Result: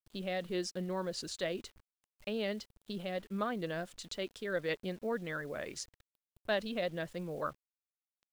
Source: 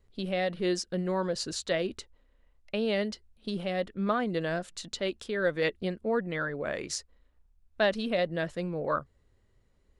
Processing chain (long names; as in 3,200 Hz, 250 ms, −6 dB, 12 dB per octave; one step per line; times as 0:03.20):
bit reduction 9 bits
tempo change 1.2×
parametric band 3,200 Hz +2 dB
level −7 dB